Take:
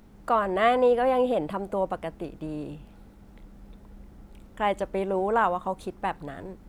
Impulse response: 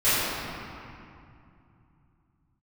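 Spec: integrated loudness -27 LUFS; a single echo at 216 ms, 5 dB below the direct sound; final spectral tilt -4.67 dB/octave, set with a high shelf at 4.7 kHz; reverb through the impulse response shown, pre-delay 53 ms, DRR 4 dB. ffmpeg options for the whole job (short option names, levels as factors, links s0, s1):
-filter_complex "[0:a]highshelf=f=4700:g=-8.5,aecho=1:1:216:0.562,asplit=2[s0][s1];[1:a]atrim=start_sample=2205,adelay=53[s2];[s1][s2]afir=irnorm=-1:irlink=0,volume=0.075[s3];[s0][s3]amix=inputs=2:normalize=0,volume=0.75"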